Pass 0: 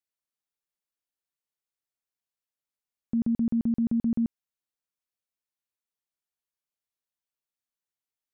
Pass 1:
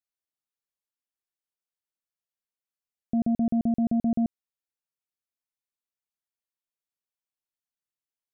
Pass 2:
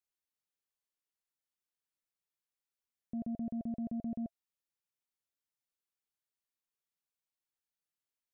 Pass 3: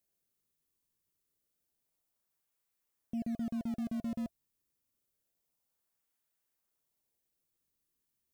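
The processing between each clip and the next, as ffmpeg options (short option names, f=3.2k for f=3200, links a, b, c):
-af "aeval=exprs='0.0944*(cos(1*acos(clip(val(0)/0.0944,-1,1)))-cos(1*PI/2))+0.0168*(cos(3*acos(clip(val(0)/0.0944,-1,1)))-cos(3*PI/2))':c=same,volume=1.5dB"
-af "bandreject=f=670:w=12,alimiter=level_in=6.5dB:limit=-24dB:level=0:latency=1:release=12,volume=-6.5dB,volume=-2dB"
-filter_complex "[0:a]crystalizer=i=1.5:c=0,asplit=2[a][b];[b]acrusher=samples=34:mix=1:aa=0.000001:lfo=1:lforange=54.4:lforate=0.28,volume=-12dB[c];[a][c]amix=inputs=2:normalize=0"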